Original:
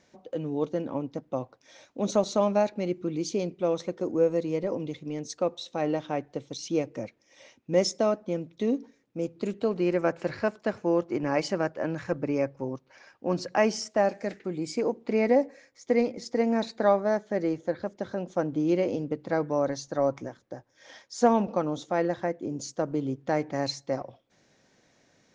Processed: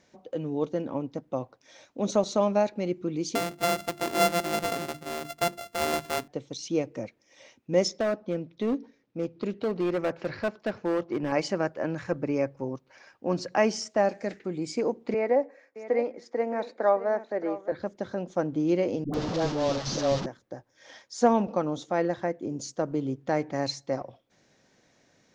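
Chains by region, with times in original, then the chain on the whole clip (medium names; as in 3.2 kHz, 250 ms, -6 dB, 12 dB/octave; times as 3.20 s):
3.35–6.28 s: sorted samples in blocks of 64 samples + hum notches 50/100/150/200/250/300/350 Hz
7.88–11.32 s: low-pass 5.5 kHz 24 dB/octave + hard clipper -22 dBFS
15.14–17.72 s: three-band isolator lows -18 dB, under 310 Hz, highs -14 dB, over 2.3 kHz + delay 617 ms -14 dB
19.04–20.26 s: one-bit delta coder 32 kbps, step -23.5 dBFS + peaking EQ 2.1 kHz -8 dB 1.3 oct + phase dispersion highs, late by 99 ms, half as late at 480 Hz
whole clip: none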